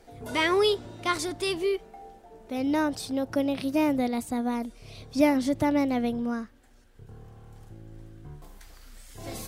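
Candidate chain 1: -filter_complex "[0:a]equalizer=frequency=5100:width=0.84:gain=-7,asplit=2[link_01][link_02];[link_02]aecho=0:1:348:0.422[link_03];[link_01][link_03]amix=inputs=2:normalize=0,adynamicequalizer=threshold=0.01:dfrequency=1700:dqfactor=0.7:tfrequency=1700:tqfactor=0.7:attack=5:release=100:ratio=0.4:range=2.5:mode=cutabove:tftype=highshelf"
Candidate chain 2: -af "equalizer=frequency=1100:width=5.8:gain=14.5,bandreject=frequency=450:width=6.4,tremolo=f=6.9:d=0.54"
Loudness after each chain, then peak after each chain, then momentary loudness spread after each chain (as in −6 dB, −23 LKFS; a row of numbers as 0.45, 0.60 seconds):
−27.5, −28.5 LKFS; −9.0, −9.5 dBFS; 22, 12 LU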